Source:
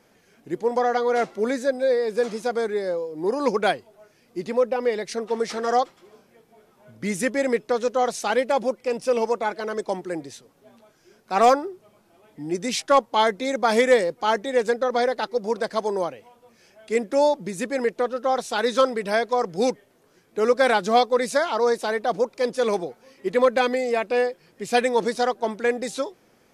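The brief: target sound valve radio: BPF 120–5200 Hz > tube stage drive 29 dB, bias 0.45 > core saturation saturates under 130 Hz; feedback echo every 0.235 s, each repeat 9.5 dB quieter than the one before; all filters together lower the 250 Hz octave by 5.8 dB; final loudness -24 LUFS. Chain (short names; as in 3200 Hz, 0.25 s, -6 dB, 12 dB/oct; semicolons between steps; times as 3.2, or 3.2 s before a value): BPF 120–5200 Hz; bell 250 Hz -6.5 dB; feedback echo 0.235 s, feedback 33%, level -9.5 dB; tube stage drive 29 dB, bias 0.45; core saturation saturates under 130 Hz; gain +10.5 dB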